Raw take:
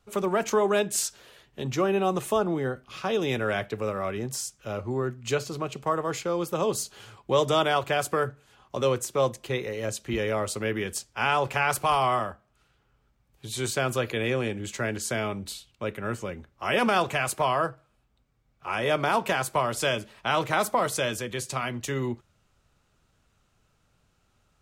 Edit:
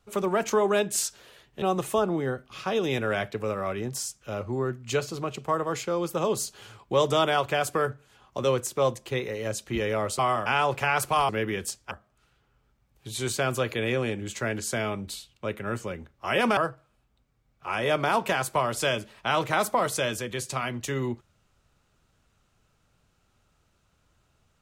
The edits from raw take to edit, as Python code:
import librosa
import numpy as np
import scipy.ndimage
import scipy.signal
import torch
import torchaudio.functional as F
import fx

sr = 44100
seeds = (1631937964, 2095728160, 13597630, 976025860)

y = fx.edit(x, sr, fx.cut(start_s=1.62, length_s=0.38),
    fx.swap(start_s=10.57, length_s=0.62, other_s=12.02, other_length_s=0.27),
    fx.cut(start_s=16.95, length_s=0.62), tone=tone)